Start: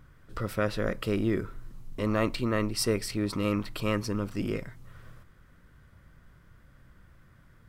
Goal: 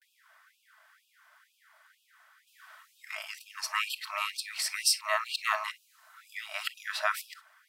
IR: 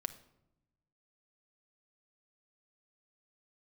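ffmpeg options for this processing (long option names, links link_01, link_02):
-filter_complex "[0:a]areverse[link_01];[1:a]atrim=start_sample=2205,atrim=end_sample=3528,asetrate=52920,aresample=44100[link_02];[link_01][link_02]afir=irnorm=-1:irlink=0,afftfilt=real='re*gte(b*sr/1024,560*pow(2500/560,0.5+0.5*sin(2*PI*2.1*pts/sr)))':imag='im*gte(b*sr/1024,560*pow(2500/560,0.5+0.5*sin(2*PI*2.1*pts/sr)))':win_size=1024:overlap=0.75,volume=8dB"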